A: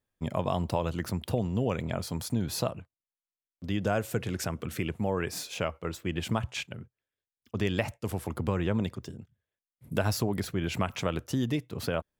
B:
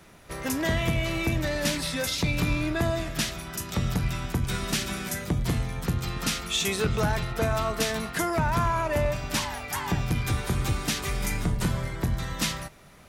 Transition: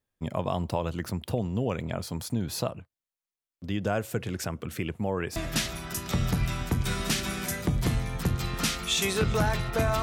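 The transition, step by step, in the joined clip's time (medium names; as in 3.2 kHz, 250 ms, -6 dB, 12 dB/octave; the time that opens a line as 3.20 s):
A
5.36 s: go over to B from 2.99 s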